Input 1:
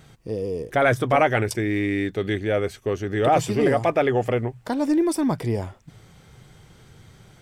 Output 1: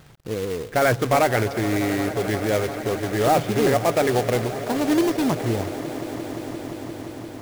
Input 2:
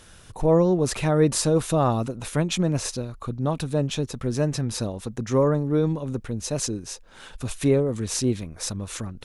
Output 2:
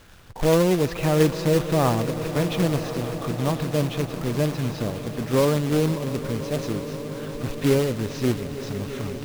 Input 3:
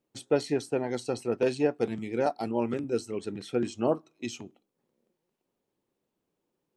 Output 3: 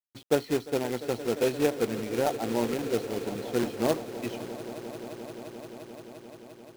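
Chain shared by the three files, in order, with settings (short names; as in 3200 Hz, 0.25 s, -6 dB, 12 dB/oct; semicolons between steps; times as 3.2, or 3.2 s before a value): Gaussian blur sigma 2.2 samples; companded quantiser 4-bit; swelling echo 0.174 s, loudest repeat 5, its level -17 dB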